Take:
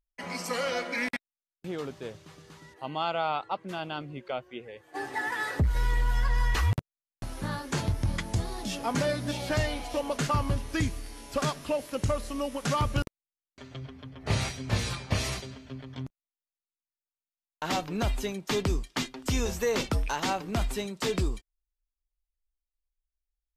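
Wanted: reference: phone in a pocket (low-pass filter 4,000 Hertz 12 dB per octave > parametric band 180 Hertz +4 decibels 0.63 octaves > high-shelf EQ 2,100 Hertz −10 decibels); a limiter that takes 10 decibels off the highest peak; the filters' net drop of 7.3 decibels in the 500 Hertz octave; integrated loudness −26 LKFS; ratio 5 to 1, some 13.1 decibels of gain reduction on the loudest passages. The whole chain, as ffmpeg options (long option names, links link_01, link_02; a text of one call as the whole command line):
ffmpeg -i in.wav -af "equalizer=frequency=500:width_type=o:gain=-8.5,acompressor=threshold=-37dB:ratio=5,alimiter=level_in=7.5dB:limit=-24dB:level=0:latency=1,volume=-7.5dB,lowpass=4000,equalizer=frequency=180:width_type=o:width=0.63:gain=4,highshelf=frequency=2100:gain=-10,volume=17.5dB" out.wav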